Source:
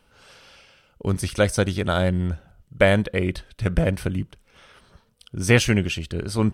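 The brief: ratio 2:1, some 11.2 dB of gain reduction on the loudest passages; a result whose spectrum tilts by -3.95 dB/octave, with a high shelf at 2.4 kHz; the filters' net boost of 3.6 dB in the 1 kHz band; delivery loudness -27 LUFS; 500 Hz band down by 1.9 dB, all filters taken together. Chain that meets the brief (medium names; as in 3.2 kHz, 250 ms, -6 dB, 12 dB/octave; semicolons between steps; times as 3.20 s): peaking EQ 500 Hz -4 dB; peaking EQ 1 kHz +4.5 dB; treble shelf 2.4 kHz +9 dB; compression 2:1, threshold -31 dBFS; trim +3 dB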